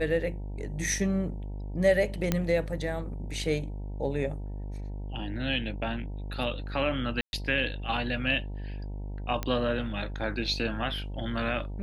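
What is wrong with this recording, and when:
mains buzz 50 Hz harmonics 19 −36 dBFS
0:02.32: click −11 dBFS
0:07.21–0:07.33: drop-out 121 ms
0:09.43: click −16 dBFS

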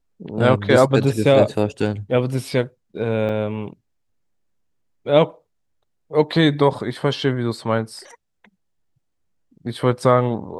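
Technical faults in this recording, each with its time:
0:03.29: drop-out 3.8 ms

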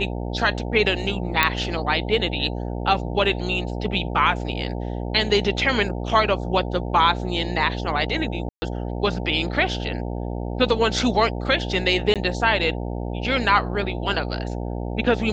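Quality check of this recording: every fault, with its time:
mains buzz 60 Hz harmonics 15 −28 dBFS
0:01.43: click −2 dBFS
0:08.49–0:08.62: drop-out 130 ms
0:12.14–0:12.16: drop-out 17 ms

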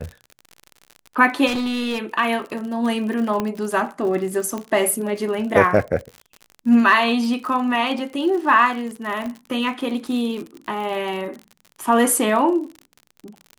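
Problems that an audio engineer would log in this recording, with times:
surface crackle 59 per second −29 dBFS
0:01.46–0:02.02: clipping −20.5 dBFS
0:03.40: click −10 dBFS
0:04.58: click −15 dBFS
0:09.26: click −18 dBFS

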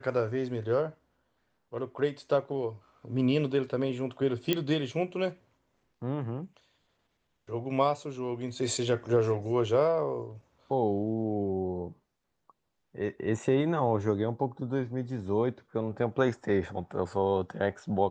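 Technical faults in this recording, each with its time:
0:04.53: click −12 dBFS

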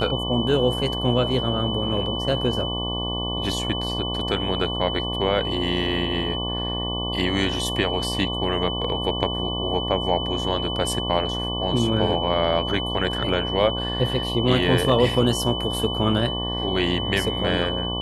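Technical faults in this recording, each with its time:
mains buzz 60 Hz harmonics 19 −29 dBFS
whistle 3,000 Hz −28 dBFS

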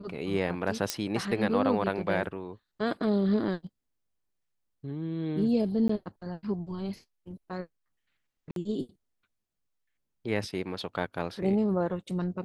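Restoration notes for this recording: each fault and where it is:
0:00.90: click −11 dBFS
0:05.88–0:05.89: drop-out 14 ms
0:08.51–0:08.56: drop-out 52 ms

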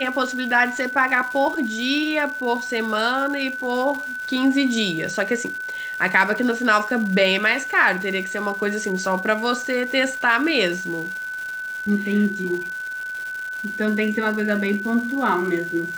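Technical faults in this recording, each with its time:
surface crackle 400 per second −30 dBFS
whistle 1,500 Hz −27 dBFS

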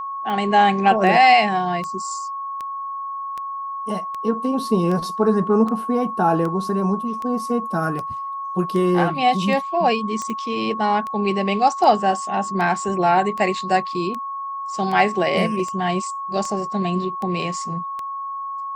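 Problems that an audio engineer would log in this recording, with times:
scratch tick 78 rpm −17 dBFS
whistle 1,100 Hz −26 dBFS
0:10.22: click −16 dBFS

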